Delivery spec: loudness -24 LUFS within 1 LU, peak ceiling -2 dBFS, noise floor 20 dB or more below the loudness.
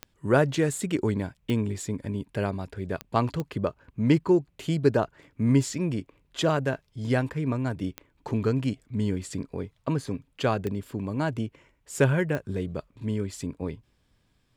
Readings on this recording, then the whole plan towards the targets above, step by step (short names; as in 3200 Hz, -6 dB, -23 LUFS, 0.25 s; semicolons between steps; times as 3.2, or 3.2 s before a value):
clicks 7; loudness -28.0 LUFS; peak -8.5 dBFS; loudness target -24.0 LUFS
-> de-click; gain +4 dB